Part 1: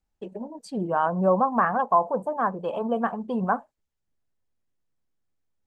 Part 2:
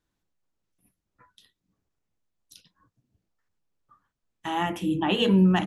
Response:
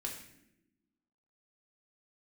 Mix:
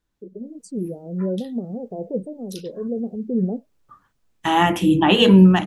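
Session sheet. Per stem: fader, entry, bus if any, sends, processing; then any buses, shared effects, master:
-2.5 dB, 0.00 s, no send, spectral gate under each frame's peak -25 dB strong; elliptic band-stop 430–6000 Hz, stop band 50 dB; auto duck -6 dB, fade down 0.40 s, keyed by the second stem
+0.5 dB, 0.00 s, no send, dry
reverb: off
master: AGC gain up to 11 dB

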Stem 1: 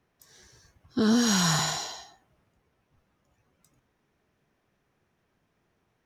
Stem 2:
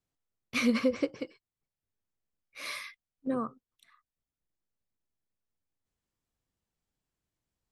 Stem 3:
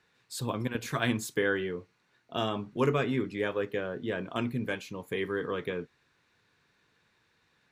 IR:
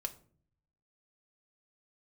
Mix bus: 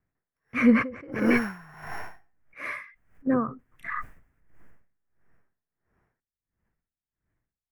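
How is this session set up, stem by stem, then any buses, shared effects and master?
+0.5 dB, 0.15 s, no send, sample sorter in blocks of 8 samples
+2.5 dB, 0.00 s, send -11.5 dB, low shelf 240 Hz +8.5 dB; sustainer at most 20 dB/s
off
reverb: on, RT60 0.50 s, pre-delay 3 ms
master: resonant high shelf 2700 Hz -13.5 dB, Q 3; dB-linear tremolo 1.5 Hz, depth 26 dB

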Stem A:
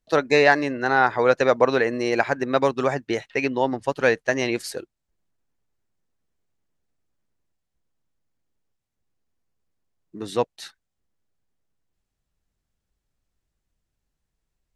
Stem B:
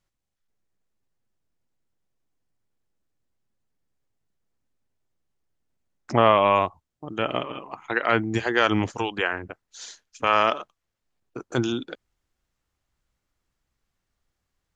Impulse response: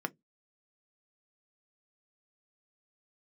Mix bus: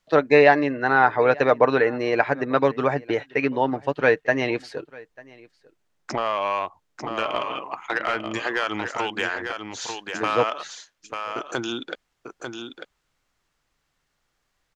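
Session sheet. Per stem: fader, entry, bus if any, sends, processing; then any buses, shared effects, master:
+1.0 dB, 0.00 s, no send, echo send -23.5 dB, LPF 3000 Hz 12 dB/oct; comb 6.7 ms, depth 35%
+1.0 dB, 0.00 s, no send, echo send -6.5 dB, compressor 4:1, threshold -27 dBFS, peak gain reduction 13 dB; overdrive pedal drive 12 dB, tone 5900 Hz, clips at -12 dBFS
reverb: off
echo: echo 0.895 s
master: low shelf 110 Hz -4.5 dB

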